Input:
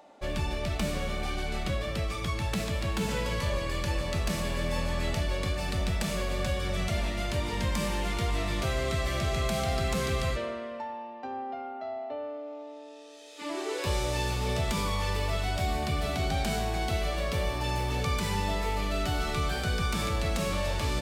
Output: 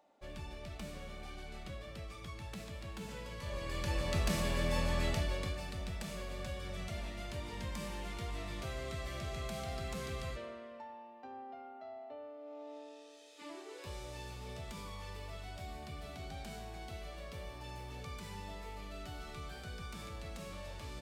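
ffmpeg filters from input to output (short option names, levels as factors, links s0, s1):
-af "volume=1.78,afade=t=in:st=3.38:d=0.79:silence=0.251189,afade=t=out:st=5:d=0.7:silence=0.354813,afade=t=in:st=12.37:d=0.39:silence=0.398107,afade=t=out:st=12.76:d=0.88:silence=0.237137"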